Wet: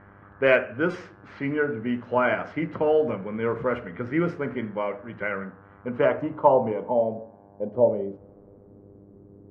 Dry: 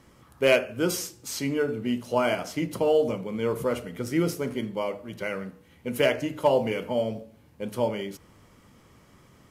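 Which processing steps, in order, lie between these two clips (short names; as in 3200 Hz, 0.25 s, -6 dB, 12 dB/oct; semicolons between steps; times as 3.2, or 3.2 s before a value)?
buzz 100 Hz, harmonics 17, -54 dBFS -4 dB/oct; low-pass sweep 1700 Hz -> 390 Hz, 5.2–9.05; 6.72–7.75 notch comb 1300 Hz; low-pass opened by the level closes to 2500 Hz, open at -18.5 dBFS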